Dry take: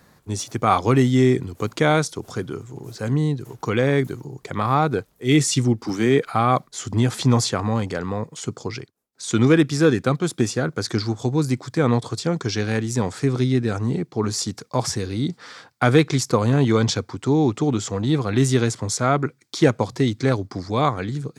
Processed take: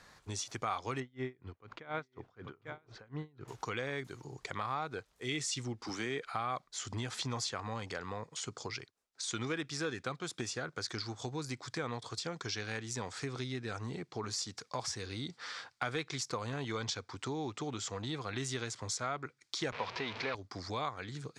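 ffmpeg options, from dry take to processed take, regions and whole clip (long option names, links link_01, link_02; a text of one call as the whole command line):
ffmpeg -i in.wav -filter_complex "[0:a]asettb=1/sr,asplit=3[link_01][link_02][link_03];[link_01]atrim=end=1.004[link_04];[link_02]atrim=start=1:end=3.48,asetpts=PTS-STARTPTS,afade=type=in:duration=0.004:curve=qsin,afade=type=out:start_time=2.476:duration=0.004:curve=qsin,lowpass=2200,aecho=1:1:845:0.133,atrim=end_sample=109368,aeval=exprs='val(0)*pow(10,-31*(0.5-0.5*cos(2*PI*4.1*n/s))/20)':channel_layout=same[link_05];[link_03]atrim=start=3.476[link_06];[link_04][link_05]acrossfade=duration=0.004:curve1=hsin:curve2=qsin[link_07];[link_07][link_06]acrossfade=duration=0.004:curve1=qsin:curve2=hsin,asettb=1/sr,asplit=3[link_08][link_09][link_10];[link_08]atrim=end=19.724[link_11];[link_09]atrim=start=19.72:end=20.35,asetpts=PTS-STARTPTS,afade=type=in:duration=0.004:curve=qsin,afade=type=out:start_time=0.626:duration=0.004:curve=qsin,aeval=exprs='val(0)+0.5*0.0841*sgn(val(0))':channel_layout=same,highpass=120,equalizer=frequency=130:width_type=q:width=4:gain=-8,equalizer=frequency=310:width_type=q:width=4:gain=-8,equalizer=frequency=460:width_type=q:width=4:gain=3,equalizer=frequency=970:width_type=q:width=4:gain=5,equalizer=frequency=2400:width_type=q:width=4:gain=7,lowpass=frequency=4500:width=0.5412,lowpass=frequency=4500:width=1.3066[link_12];[link_10]atrim=start=20.346[link_13];[link_11][link_12]acrossfade=duration=0.004:curve1=hsin:curve2=qsin[link_14];[link_14][link_13]acrossfade=duration=0.004:curve1=qsin:curve2=hsin,lowpass=7000,equalizer=frequency=190:width=0.35:gain=-13.5,acompressor=threshold=-41dB:ratio=2.5,volume=1dB" out.wav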